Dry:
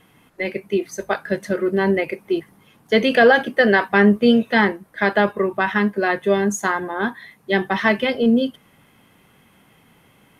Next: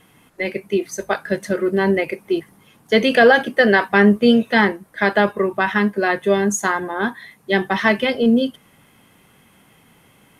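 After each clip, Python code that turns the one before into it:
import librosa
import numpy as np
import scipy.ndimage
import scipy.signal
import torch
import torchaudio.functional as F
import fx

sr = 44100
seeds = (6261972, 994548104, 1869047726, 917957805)

y = fx.peak_eq(x, sr, hz=8600.0, db=4.5, octaves=1.4)
y = y * 10.0 ** (1.0 / 20.0)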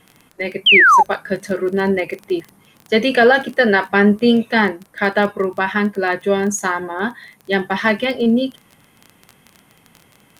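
y = fx.spec_paint(x, sr, seeds[0], shape='fall', start_s=0.66, length_s=0.37, low_hz=790.0, high_hz=3300.0, level_db=-9.0)
y = fx.dmg_crackle(y, sr, seeds[1], per_s=15.0, level_db=-25.0)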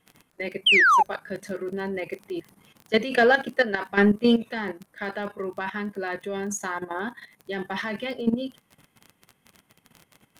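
y = 10.0 ** (-2.5 / 20.0) * np.tanh(x / 10.0 ** (-2.5 / 20.0))
y = fx.level_steps(y, sr, step_db=13)
y = y * 10.0 ** (-3.5 / 20.0)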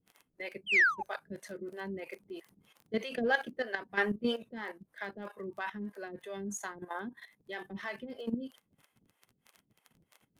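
y = fx.harmonic_tremolo(x, sr, hz=3.1, depth_pct=100, crossover_hz=430.0)
y = y * 10.0 ** (-5.5 / 20.0)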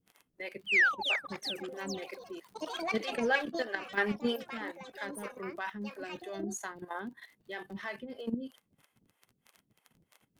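y = fx.echo_pitch(x, sr, ms=543, semitones=6, count=3, db_per_echo=-6.0)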